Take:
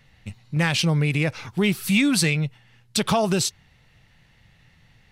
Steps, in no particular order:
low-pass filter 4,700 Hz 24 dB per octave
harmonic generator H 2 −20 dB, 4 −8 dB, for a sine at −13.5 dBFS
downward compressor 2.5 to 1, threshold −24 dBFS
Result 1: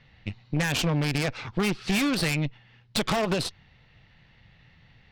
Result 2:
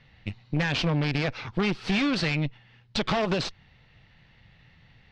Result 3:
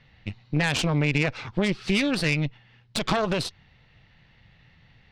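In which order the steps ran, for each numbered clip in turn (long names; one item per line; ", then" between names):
low-pass filter, then harmonic generator, then downward compressor
harmonic generator, then downward compressor, then low-pass filter
downward compressor, then low-pass filter, then harmonic generator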